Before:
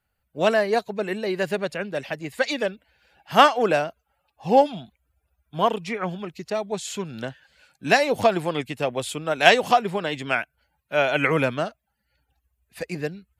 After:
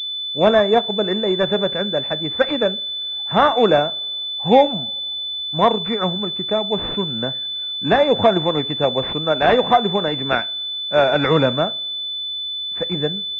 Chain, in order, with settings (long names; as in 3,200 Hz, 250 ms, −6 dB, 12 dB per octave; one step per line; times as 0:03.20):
coupled-rooms reverb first 0.36 s, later 1.7 s, from −22 dB, DRR 15 dB
boost into a limiter +7.5 dB
switching amplifier with a slow clock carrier 3,500 Hz
level −1 dB